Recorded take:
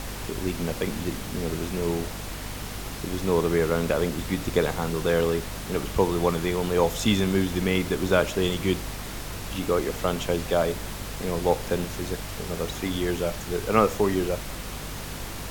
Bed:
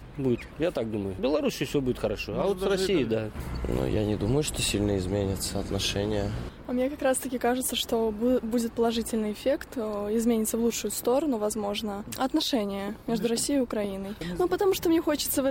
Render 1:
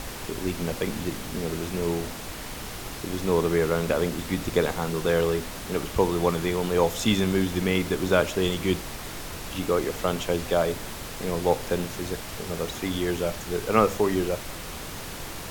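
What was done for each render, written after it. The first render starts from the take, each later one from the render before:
hum removal 50 Hz, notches 5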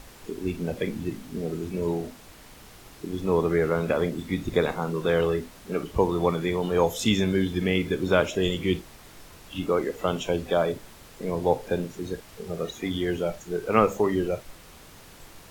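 noise reduction from a noise print 12 dB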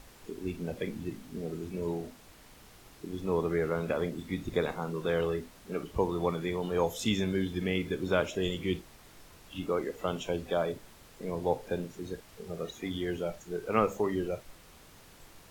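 level −6.5 dB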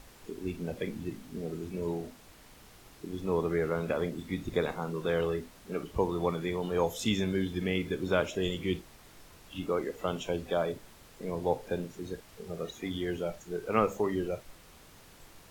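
no processing that can be heard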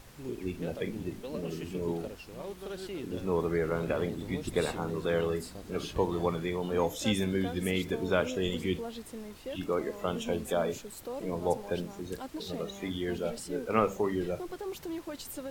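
mix in bed −14.5 dB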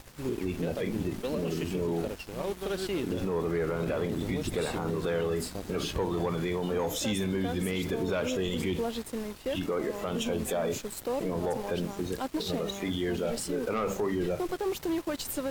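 leveller curve on the samples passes 2
brickwall limiter −22.5 dBFS, peak gain reduction 11 dB

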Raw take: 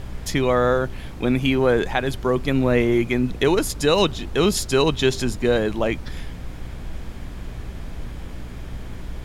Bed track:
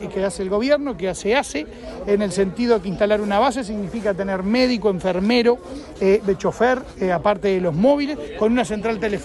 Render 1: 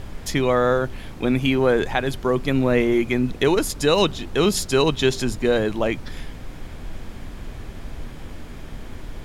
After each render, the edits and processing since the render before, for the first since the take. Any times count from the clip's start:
hum removal 60 Hz, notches 3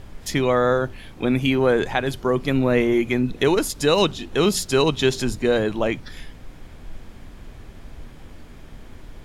noise reduction from a noise print 6 dB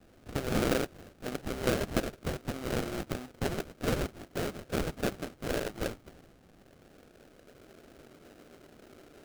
band-pass filter sweep 1,600 Hz → 400 Hz, 0:05.50–0:07.89
sample-rate reduction 1,000 Hz, jitter 20%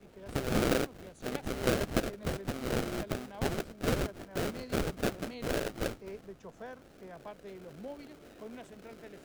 mix in bed track −28.5 dB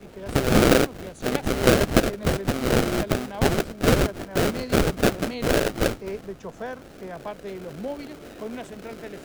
level +11.5 dB

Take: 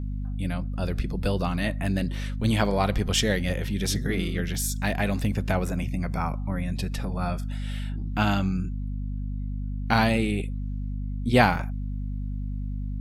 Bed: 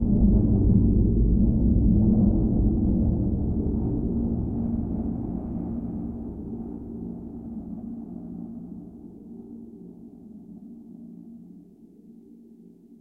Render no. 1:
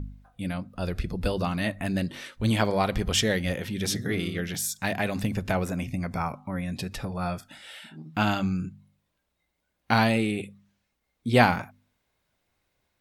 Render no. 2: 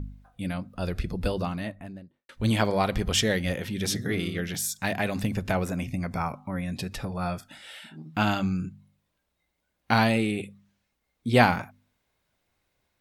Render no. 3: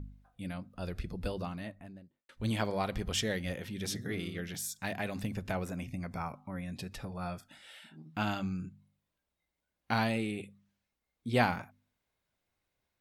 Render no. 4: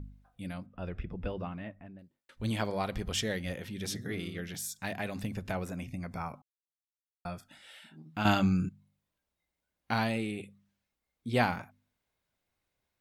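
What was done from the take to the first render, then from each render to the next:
hum removal 50 Hz, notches 5
0:01.13–0:02.29: fade out and dull
level −8.5 dB
0:00.66–0:01.99: Savitzky-Golay smoothing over 25 samples; 0:06.42–0:07.25: silence; 0:08.25–0:08.69: clip gain +9 dB

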